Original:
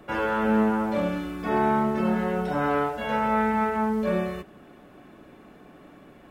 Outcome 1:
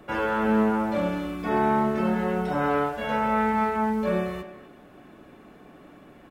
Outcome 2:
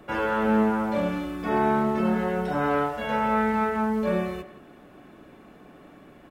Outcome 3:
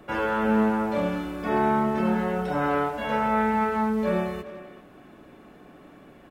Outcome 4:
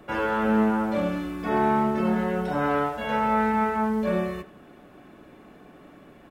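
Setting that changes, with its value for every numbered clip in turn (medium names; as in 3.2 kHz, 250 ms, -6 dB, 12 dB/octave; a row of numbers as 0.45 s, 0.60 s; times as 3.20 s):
speakerphone echo, time: 260 ms, 170 ms, 390 ms, 80 ms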